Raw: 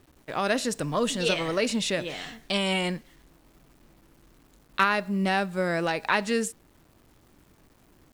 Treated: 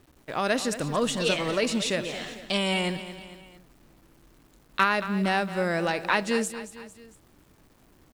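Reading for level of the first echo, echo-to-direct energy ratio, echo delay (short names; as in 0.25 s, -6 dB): -13.0 dB, -12.0 dB, 0.226 s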